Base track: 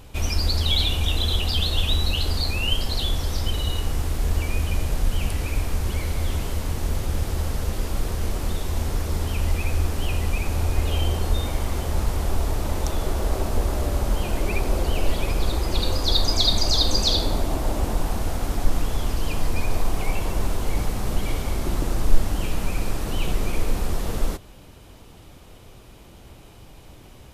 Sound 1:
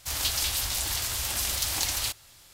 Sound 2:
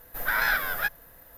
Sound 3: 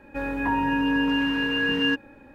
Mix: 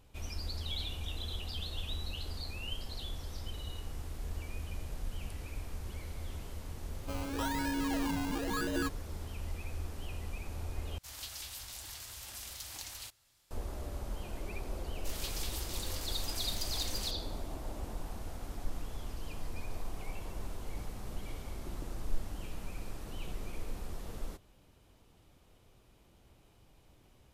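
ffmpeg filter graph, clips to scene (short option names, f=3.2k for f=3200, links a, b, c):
-filter_complex "[1:a]asplit=2[a][b];[0:a]volume=-17dB[c];[3:a]acrusher=samples=19:mix=1:aa=0.000001:lfo=1:lforange=11.4:lforate=0.98[d];[c]asplit=2[e][f];[e]atrim=end=10.984[g];[a]atrim=end=2.53,asetpts=PTS-STARTPTS,volume=-16.5dB[h];[f]atrim=start=13.506[i];[d]atrim=end=2.34,asetpts=PTS-STARTPTS,volume=-11dB,afade=t=in:d=0.004:c=hsin,afade=t=out:st=2.336:d=0.004:c=hsin,adelay=6930[j];[b]atrim=end=2.53,asetpts=PTS-STARTPTS,volume=-14dB,afade=t=in:d=0.004:c=hsin,afade=t=out:st=2.526:d=0.004:c=hsin,adelay=14990[k];[g][h]acrossfade=d=0.004:c1=hsin:c2=hsin[l];[l][i]acrossfade=d=0.004:c1=hsin:c2=hsin[m];[m][j][k]amix=inputs=3:normalize=0"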